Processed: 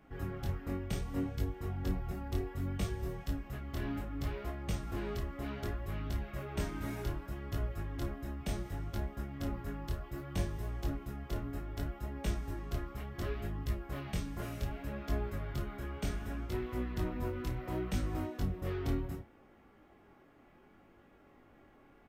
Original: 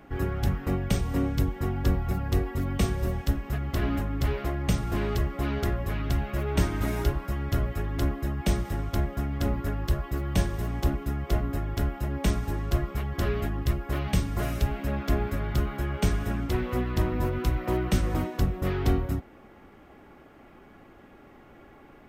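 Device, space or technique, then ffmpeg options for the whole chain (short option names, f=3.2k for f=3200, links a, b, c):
double-tracked vocal: -filter_complex "[0:a]asplit=2[a][b];[b]adelay=32,volume=-11dB[c];[a][c]amix=inputs=2:normalize=0,flanger=delay=19:depth=6:speed=0.66,volume=-7.5dB"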